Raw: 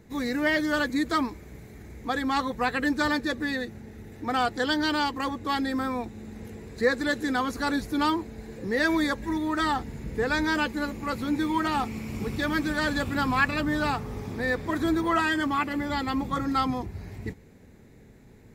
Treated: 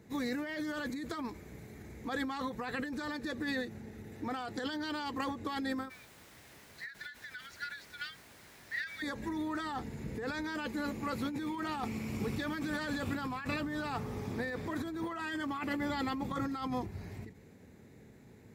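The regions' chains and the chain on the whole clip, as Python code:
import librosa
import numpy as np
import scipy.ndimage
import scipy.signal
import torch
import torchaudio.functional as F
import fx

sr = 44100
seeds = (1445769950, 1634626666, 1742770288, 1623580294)

y = fx.cheby_ripple_highpass(x, sr, hz=1400.0, ripple_db=3, at=(5.88, 9.02), fade=0.02)
y = fx.air_absorb(y, sr, metres=160.0, at=(5.88, 9.02), fade=0.02)
y = fx.dmg_noise_colour(y, sr, seeds[0], colour='pink', level_db=-53.0, at=(5.88, 9.02), fade=0.02)
y = scipy.signal.sosfilt(scipy.signal.butter(2, 79.0, 'highpass', fs=sr, output='sos'), y)
y = fx.over_compress(y, sr, threshold_db=-30.0, ratio=-1.0)
y = fx.end_taper(y, sr, db_per_s=130.0)
y = F.gain(torch.from_numpy(y), -6.0).numpy()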